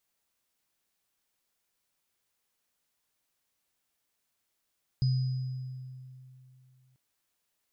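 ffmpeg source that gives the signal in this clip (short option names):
-f lavfi -i "aevalsrc='0.0794*pow(10,-3*t/2.78)*sin(2*PI*129*t)+0.0112*pow(10,-3*t/1.43)*sin(2*PI*4980*t)':d=1.94:s=44100"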